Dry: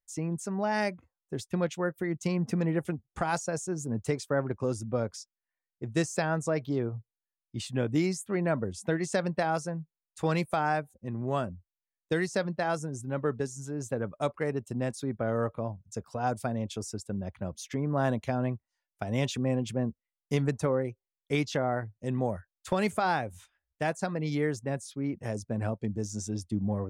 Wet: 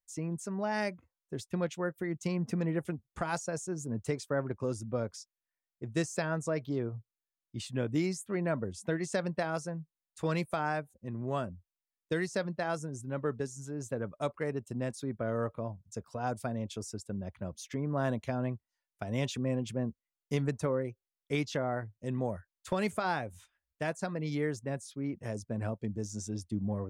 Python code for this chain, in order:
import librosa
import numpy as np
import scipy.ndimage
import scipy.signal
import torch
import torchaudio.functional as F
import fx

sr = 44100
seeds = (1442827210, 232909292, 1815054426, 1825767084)

y = fx.notch(x, sr, hz=790.0, q=13.0)
y = y * 10.0 ** (-3.5 / 20.0)